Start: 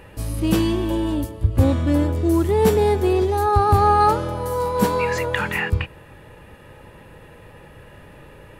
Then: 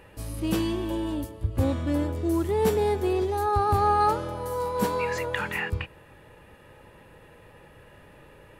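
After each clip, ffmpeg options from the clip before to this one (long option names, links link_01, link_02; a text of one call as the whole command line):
ffmpeg -i in.wav -af "bass=frequency=250:gain=-3,treble=frequency=4000:gain=0,volume=-6dB" out.wav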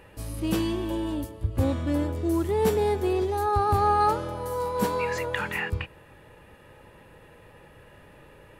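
ffmpeg -i in.wav -af anull out.wav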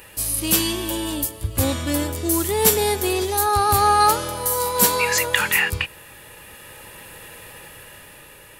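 ffmpeg -i in.wav -af "crystalizer=i=9.5:c=0,dynaudnorm=framelen=190:gausssize=11:maxgain=5dB" out.wav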